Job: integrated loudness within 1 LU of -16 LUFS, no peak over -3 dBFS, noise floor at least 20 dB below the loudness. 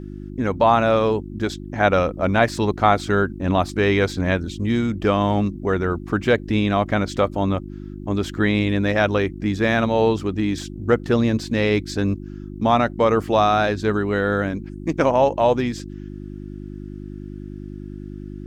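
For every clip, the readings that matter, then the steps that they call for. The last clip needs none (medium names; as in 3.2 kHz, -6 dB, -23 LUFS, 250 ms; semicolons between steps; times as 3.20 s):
hum 50 Hz; highest harmonic 350 Hz; hum level -32 dBFS; loudness -20.5 LUFS; peak level -3.5 dBFS; loudness target -16.0 LUFS
-> de-hum 50 Hz, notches 7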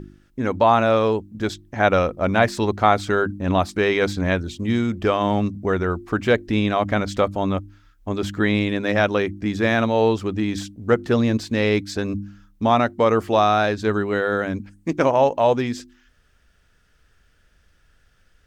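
hum not found; loudness -21.0 LUFS; peak level -3.0 dBFS; loudness target -16.0 LUFS
-> trim +5 dB; peak limiter -3 dBFS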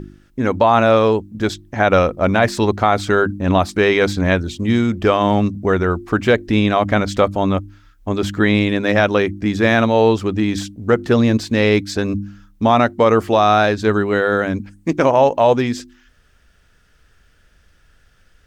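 loudness -16.5 LUFS; peak level -3.0 dBFS; noise floor -55 dBFS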